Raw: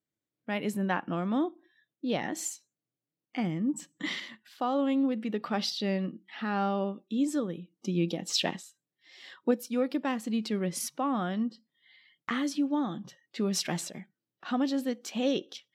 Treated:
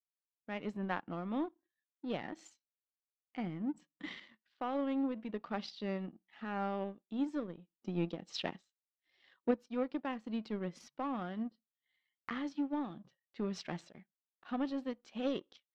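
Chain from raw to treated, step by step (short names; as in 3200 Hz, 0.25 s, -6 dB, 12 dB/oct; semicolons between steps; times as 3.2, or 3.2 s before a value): power-law curve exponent 1.4; air absorption 180 m; gain -3.5 dB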